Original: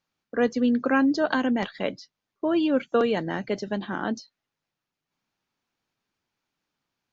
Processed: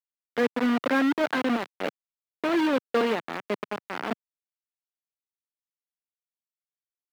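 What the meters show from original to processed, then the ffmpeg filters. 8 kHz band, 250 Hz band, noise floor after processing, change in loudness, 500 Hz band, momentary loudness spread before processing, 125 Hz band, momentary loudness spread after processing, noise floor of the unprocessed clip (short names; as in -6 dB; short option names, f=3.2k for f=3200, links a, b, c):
n/a, -2.5 dB, under -85 dBFS, -1.5 dB, -2.0 dB, 10 LU, -8.0 dB, 11 LU, under -85 dBFS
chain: -filter_complex "[0:a]acrusher=bits=3:mix=0:aa=0.000001,acrossover=split=160 3500:gain=0.0631 1 0.112[a][b][c];[a][b][c]amix=inputs=3:normalize=0,volume=-2dB"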